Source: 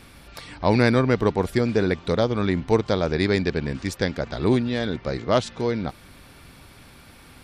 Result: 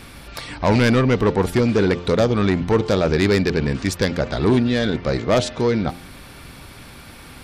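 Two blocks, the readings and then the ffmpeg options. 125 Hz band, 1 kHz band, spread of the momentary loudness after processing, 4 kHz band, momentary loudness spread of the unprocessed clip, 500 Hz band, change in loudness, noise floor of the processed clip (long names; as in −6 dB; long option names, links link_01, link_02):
+4.5 dB, +3.0 dB, 7 LU, +4.5 dB, 9 LU, +3.5 dB, +4.0 dB, −41 dBFS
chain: -af "asoftclip=type=tanh:threshold=-17.5dB,bandreject=frequency=87.74:width_type=h:width=4,bandreject=frequency=175.48:width_type=h:width=4,bandreject=frequency=263.22:width_type=h:width=4,bandreject=frequency=350.96:width_type=h:width=4,bandreject=frequency=438.7:width_type=h:width=4,bandreject=frequency=526.44:width_type=h:width=4,bandreject=frequency=614.18:width_type=h:width=4,bandreject=frequency=701.92:width_type=h:width=4,bandreject=frequency=789.66:width_type=h:width=4,bandreject=frequency=877.4:width_type=h:width=4,volume=7.5dB"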